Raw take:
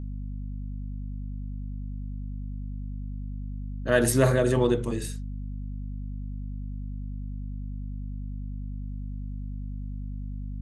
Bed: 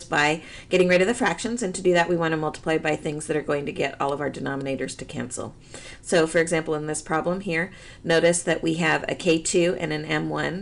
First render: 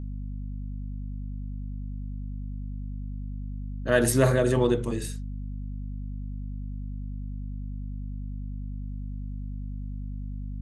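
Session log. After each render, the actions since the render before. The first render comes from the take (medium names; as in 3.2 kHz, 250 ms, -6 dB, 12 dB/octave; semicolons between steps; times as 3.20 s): no audible change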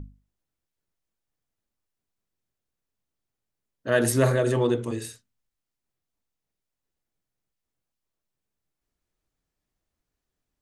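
hum notches 50/100/150/200/250 Hz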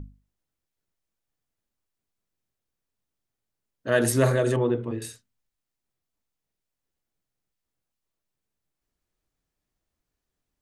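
4.56–5.02 s: distance through air 430 m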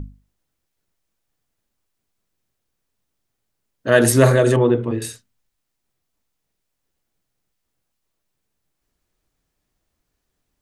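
trim +8 dB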